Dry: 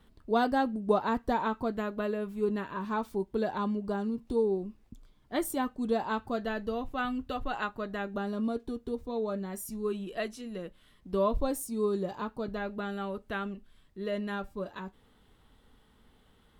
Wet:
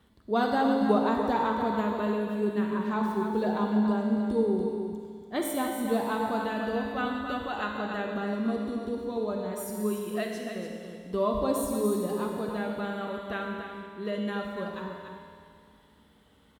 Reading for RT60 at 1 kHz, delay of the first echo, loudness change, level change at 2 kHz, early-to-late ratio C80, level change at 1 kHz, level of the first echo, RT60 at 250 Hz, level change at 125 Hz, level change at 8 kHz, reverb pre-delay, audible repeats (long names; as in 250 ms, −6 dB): 2.2 s, 289 ms, +3.0 dB, +2.5 dB, 1.5 dB, +3.0 dB, −7.5 dB, 2.2 s, +4.0 dB, +3.0 dB, 39 ms, 1